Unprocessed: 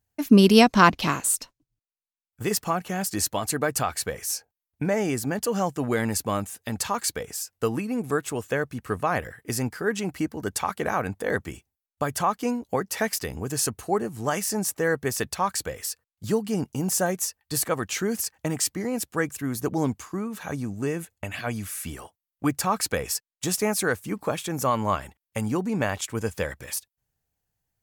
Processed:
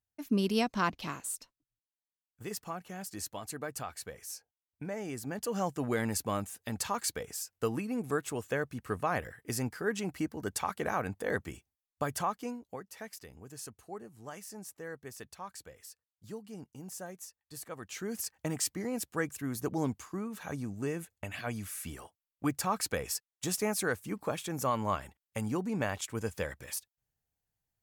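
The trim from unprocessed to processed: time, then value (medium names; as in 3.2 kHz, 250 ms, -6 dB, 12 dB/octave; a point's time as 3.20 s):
5.01 s -14 dB
5.67 s -6.5 dB
12.14 s -6.5 dB
12.88 s -19 dB
17.62 s -19 dB
18.31 s -7 dB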